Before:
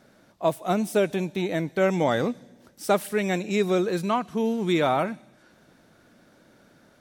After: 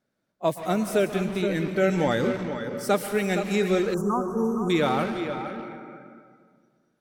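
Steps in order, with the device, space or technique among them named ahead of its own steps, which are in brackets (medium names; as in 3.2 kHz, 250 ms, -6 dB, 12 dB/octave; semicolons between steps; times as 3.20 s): tape echo 469 ms, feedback 31%, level -6.5 dB, low-pass 3.8 kHz; spectral noise reduction 21 dB; peaking EQ 790 Hz -2 dB; saturated reverb return (on a send at -3.5 dB: reverberation RT60 1.8 s, pre-delay 119 ms + saturation -28 dBFS, distortion -8 dB); 3.94–4.70 s: on the sum: elliptic band-stop 1.3–6.2 kHz, stop band 40 dB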